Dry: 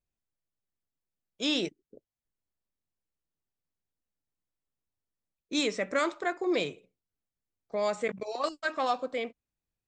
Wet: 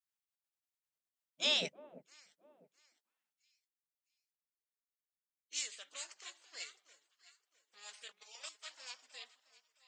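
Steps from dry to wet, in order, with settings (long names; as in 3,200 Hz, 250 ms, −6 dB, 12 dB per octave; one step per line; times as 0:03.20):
delay that swaps between a low-pass and a high-pass 330 ms, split 1,200 Hz, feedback 55%, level −13.5 dB
high-pass filter sweep 280 Hz → 3,100 Hz, 0:02.73–0:03.46
gate on every frequency bin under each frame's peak −15 dB weak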